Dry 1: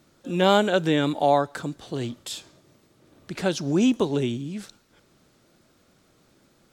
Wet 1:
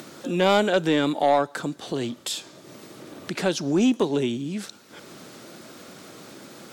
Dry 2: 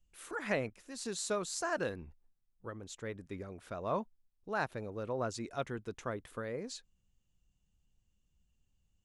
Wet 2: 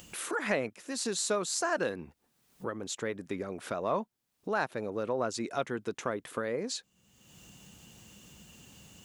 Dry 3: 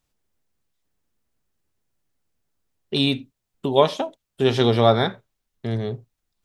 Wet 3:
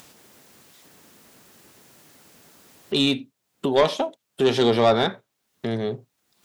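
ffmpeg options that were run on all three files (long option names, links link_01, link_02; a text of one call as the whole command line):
ffmpeg -i in.wav -filter_complex "[0:a]highpass=180,asplit=2[link_01][link_02];[link_02]acompressor=mode=upward:threshold=-22dB:ratio=2.5,volume=0dB[link_03];[link_01][link_03]amix=inputs=2:normalize=0,asoftclip=type=tanh:threshold=-6dB,volume=-4dB" out.wav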